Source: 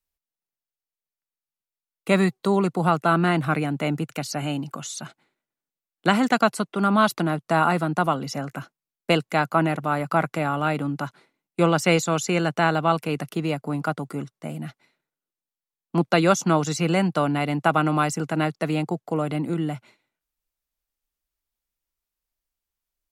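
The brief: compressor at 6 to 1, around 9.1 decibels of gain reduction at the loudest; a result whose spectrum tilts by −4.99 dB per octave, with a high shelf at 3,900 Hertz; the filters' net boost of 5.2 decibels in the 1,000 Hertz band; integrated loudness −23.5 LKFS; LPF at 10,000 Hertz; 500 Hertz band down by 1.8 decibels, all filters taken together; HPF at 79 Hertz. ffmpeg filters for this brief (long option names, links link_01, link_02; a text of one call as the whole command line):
ffmpeg -i in.wav -af "highpass=79,lowpass=10000,equalizer=frequency=500:width_type=o:gain=-6,equalizer=frequency=1000:width_type=o:gain=9,highshelf=frequency=3900:gain=-3.5,acompressor=threshold=-20dB:ratio=6,volume=3.5dB" out.wav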